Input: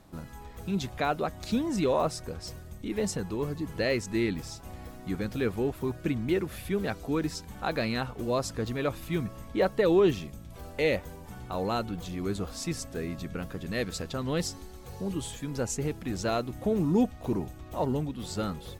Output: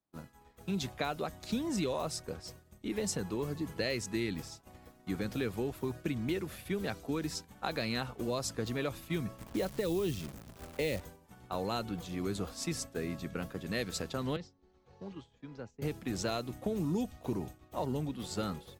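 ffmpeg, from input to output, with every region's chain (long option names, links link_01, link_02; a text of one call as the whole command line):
ffmpeg -i in.wav -filter_complex "[0:a]asettb=1/sr,asplit=3[link_01][link_02][link_03];[link_01]atrim=end=9.384[link_04];[link_02]atrim=start=9.38:end=11.01,asetpts=PTS-STARTPTS,afade=type=in:duration=0.004:curve=qsin,afade=type=out:start_time=1.626:duration=0.004:curve=qsin,tiltshelf=frequency=660:gain=3.5,acrusher=bits=8:dc=4:mix=0:aa=0.000001[link_05];[link_03]atrim=start=11.006[link_06];[link_04][link_05]acrossfade=duration=0.004:curve1=hsin:curve2=qsin[link_07];[link_07][link_06]acrossfade=duration=0.004:curve1=qsin:curve2=hsin,asettb=1/sr,asplit=3[link_08][link_09][link_10];[link_08]atrim=end=14.364[link_11];[link_09]atrim=start=14.36:end=15.82,asetpts=PTS-STARTPTS,afade=type=in:duration=0.004:curve=qsin,afade=type=out:start_time=1.456:duration=0.004:curve=qsin,acrossover=split=240|750[link_12][link_13][link_14];[link_12]acompressor=threshold=-43dB:ratio=4[link_15];[link_13]acompressor=threshold=-45dB:ratio=4[link_16];[link_14]acompressor=threshold=-49dB:ratio=4[link_17];[link_15][link_16][link_17]amix=inputs=3:normalize=0,lowpass=frequency=6400:width=0.5412,lowpass=frequency=6400:width=1.3066,aemphasis=mode=reproduction:type=50fm[link_18];[link_10]atrim=start=15.816[link_19];[link_11][link_18]acrossfade=duration=0.004:curve1=hsin:curve2=qsin[link_20];[link_20][link_19]acrossfade=duration=0.004:curve1=qsin:curve2=hsin,agate=range=-33dB:threshold=-34dB:ratio=3:detection=peak,lowshelf=frequency=72:gain=-12,acrossover=split=130|3000[link_21][link_22][link_23];[link_22]acompressor=threshold=-32dB:ratio=6[link_24];[link_21][link_24][link_23]amix=inputs=3:normalize=0" out.wav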